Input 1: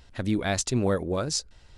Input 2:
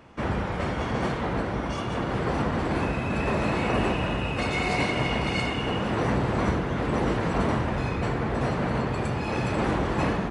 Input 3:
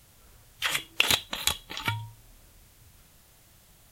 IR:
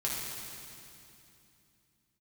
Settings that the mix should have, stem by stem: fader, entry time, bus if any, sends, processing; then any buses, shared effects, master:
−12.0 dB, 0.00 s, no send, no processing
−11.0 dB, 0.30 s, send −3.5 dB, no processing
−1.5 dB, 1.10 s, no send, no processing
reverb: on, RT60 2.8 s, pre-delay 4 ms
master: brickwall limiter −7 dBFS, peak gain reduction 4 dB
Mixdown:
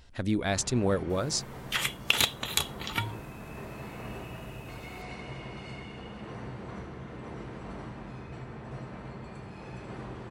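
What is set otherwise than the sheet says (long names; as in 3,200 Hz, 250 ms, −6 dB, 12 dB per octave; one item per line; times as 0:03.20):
stem 1 −12.0 dB → −2.0 dB
stem 2 −11.0 dB → −22.5 dB
master: missing brickwall limiter −7 dBFS, peak gain reduction 4 dB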